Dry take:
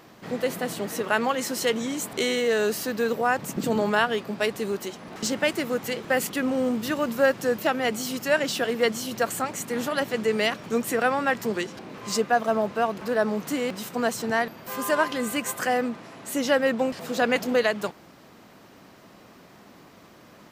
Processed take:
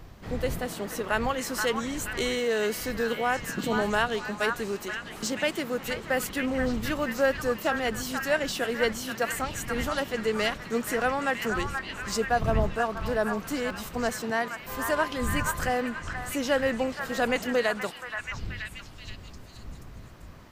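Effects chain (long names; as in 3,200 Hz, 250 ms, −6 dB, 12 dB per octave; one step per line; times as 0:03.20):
wind on the microphone 100 Hz −36 dBFS
echo through a band-pass that steps 478 ms, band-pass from 1,300 Hz, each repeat 0.7 octaves, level −2 dB
level −3.5 dB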